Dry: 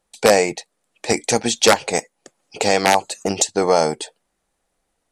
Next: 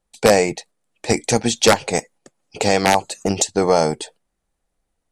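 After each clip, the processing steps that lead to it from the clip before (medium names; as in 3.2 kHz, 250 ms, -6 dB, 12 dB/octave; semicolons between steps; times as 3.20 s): gate -43 dBFS, range -6 dB; bass shelf 170 Hz +11 dB; trim -1 dB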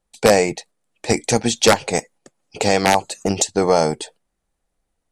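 no audible change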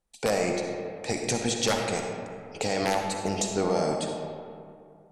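peak limiter -10.5 dBFS, peak gain reduction 8.5 dB; on a send at -2 dB: reverberation RT60 2.4 s, pre-delay 20 ms; on the sum: trim -6 dB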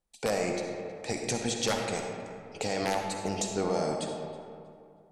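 tape echo 320 ms, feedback 32%, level -19.5 dB, low-pass 5 kHz; trim -3.5 dB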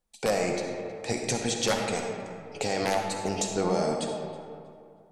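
flange 0.5 Hz, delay 4 ms, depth 5.1 ms, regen +72%; trim +7 dB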